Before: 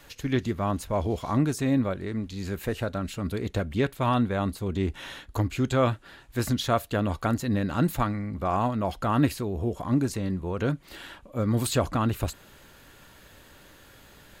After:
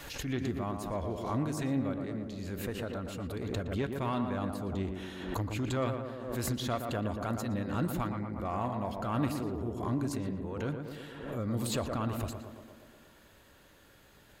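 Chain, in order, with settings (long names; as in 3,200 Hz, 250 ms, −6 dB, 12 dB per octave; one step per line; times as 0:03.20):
one-sided soft clipper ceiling −12.5 dBFS
tape delay 117 ms, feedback 79%, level −4.5 dB, low-pass 1,500 Hz
background raised ahead of every attack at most 53 dB per second
level −8.5 dB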